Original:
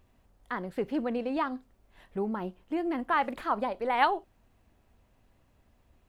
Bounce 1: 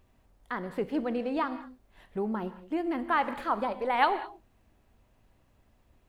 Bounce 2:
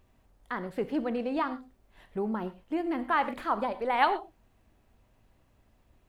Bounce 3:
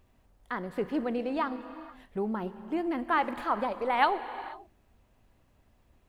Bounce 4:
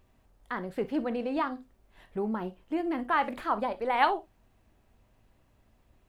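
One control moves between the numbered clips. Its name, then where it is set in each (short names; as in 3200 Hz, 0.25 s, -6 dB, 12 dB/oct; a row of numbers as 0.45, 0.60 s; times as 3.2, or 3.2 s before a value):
non-linear reverb, gate: 230, 140, 510, 80 ms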